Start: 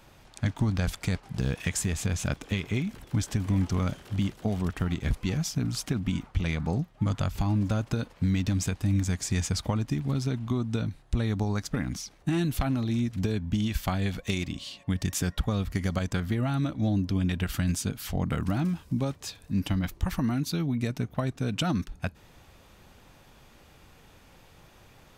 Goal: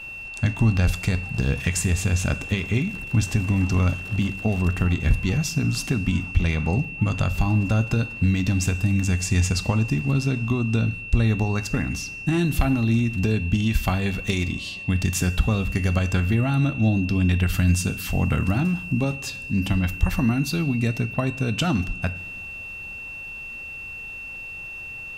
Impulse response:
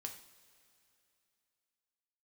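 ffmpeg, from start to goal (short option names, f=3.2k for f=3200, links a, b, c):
-filter_complex "[0:a]aeval=exprs='val(0)+0.0112*sin(2*PI*2700*n/s)':c=same,asplit=2[a][b];[1:a]atrim=start_sample=2205,lowshelf=f=88:g=11[c];[b][c]afir=irnorm=-1:irlink=0,volume=1dB[d];[a][d]amix=inputs=2:normalize=0"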